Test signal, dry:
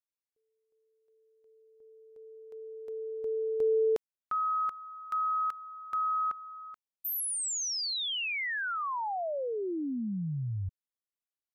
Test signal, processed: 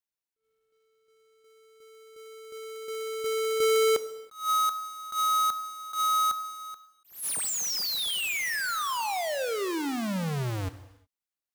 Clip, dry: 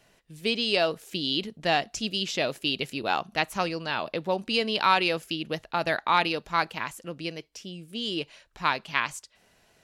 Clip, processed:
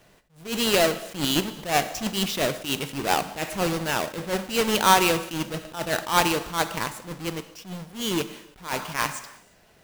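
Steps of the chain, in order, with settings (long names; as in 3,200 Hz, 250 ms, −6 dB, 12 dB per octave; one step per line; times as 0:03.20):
each half-wave held at its own peak
reverb whose tail is shaped and stops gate 390 ms falling, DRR 11.5 dB
level that may rise only so fast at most 160 dB per second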